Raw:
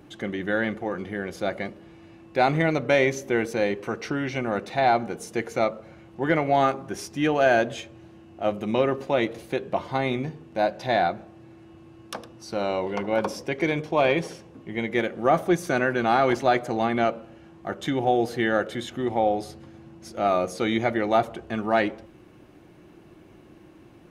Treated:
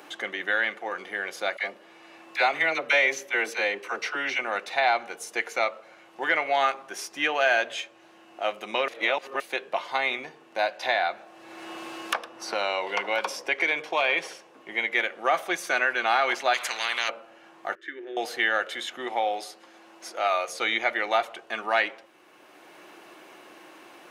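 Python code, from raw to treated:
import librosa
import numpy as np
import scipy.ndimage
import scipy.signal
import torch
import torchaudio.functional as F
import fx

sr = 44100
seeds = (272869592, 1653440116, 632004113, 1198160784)

y = fx.dispersion(x, sr, late='lows', ms=48.0, hz=790.0, at=(1.57, 4.39))
y = fx.band_squash(y, sr, depth_pct=70, at=(10.82, 14.13))
y = fx.spectral_comp(y, sr, ratio=4.0, at=(16.53, 17.08), fade=0.02)
y = fx.double_bandpass(y, sr, hz=780.0, octaves=2.3, at=(17.75, 18.17))
y = fx.highpass(y, sr, hz=fx.line((19.07, 130.0), (20.47, 420.0)), slope=12, at=(19.07, 20.47), fade=0.02)
y = fx.edit(y, sr, fx.reverse_span(start_s=8.88, length_s=0.52), tone=tone)
y = fx.dynamic_eq(y, sr, hz=2500.0, q=0.87, threshold_db=-40.0, ratio=4.0, max_db=7)
y = scipy.signal.sosfilt(scipy.signal.butter(2, 720.0, 'highpass', fs=sr, output='sos'), y)
y = fx.band_squash(y, sr, depth_pct=40)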